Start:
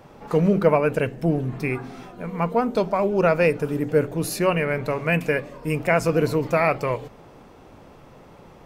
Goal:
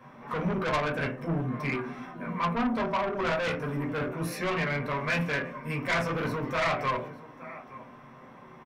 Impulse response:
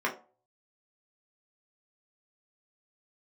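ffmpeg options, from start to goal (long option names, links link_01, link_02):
-filter_complex "[0:a]lowshelf=frequency=160:gain=4.5,aecho=1:1:867:0.0841[link_01];[1:a]atrim=start_sample=2205[link_02];[link_01][link_02]afir=irnorm=-1:irlink=0,asoftclip=type=tanh:threshold=-12dB,equalizer=frequency=450:width_type=o:width=0.93:gain=-11,volume=-8dB"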